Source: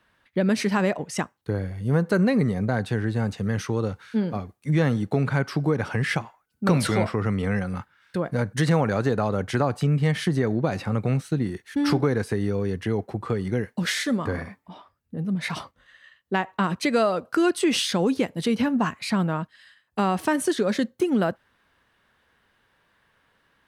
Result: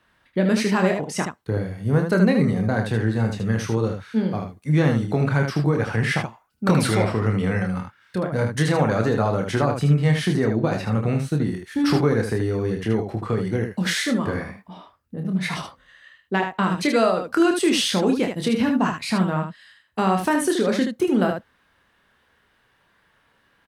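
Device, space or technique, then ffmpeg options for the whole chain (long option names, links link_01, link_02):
slapback doubling: -filter_complex "[0:a]asplit=3[link_01][link_02][link_03];[link_02]adelay=27,volume=-6dB[link_04];[link_03]adelay=77,volume=-6dB[link_05];[link_01][link_04][link_05]amix=inputs=3:normalize=0,volume=1dB"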